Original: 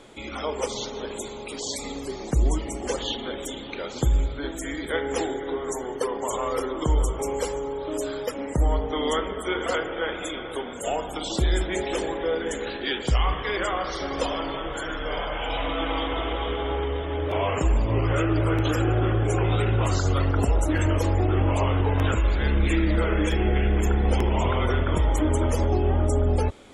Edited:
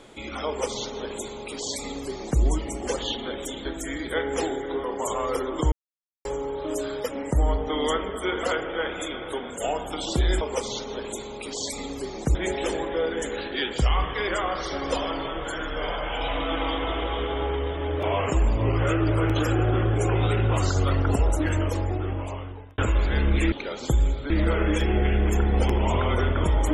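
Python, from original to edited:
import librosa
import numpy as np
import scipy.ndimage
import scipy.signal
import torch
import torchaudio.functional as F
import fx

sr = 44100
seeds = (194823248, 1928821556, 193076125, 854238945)

y = fx.edit(x, sr, fx.duplicate(start_s=0.47, length_s=1.94, to_s=11.64),
    fx.move(start_s=3.65, length_s=0.78, to_s=22.81),
    fx.cut(start_s=5.62, length_s=0.45),
    fx.silence(start_s=6.95, length_s=0.53),
    fx.fade_out_span(start_s=20.54, length_s=1.53), tone=tone)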